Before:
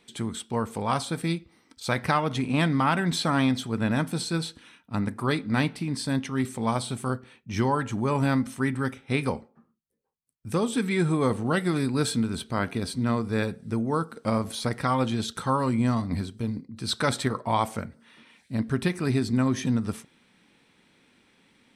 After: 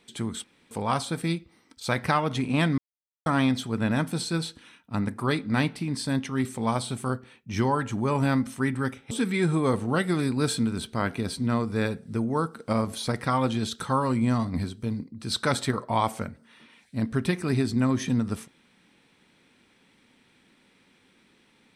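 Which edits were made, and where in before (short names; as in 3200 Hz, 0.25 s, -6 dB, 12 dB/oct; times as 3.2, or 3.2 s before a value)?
0.44–0.71 room tone
2.78–3.26 mute
9.11–10.68 cut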